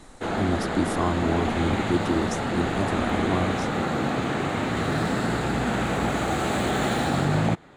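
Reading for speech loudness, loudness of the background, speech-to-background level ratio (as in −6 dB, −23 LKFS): −28.0 LKFS, −26.0 LKFS, −2.0 dB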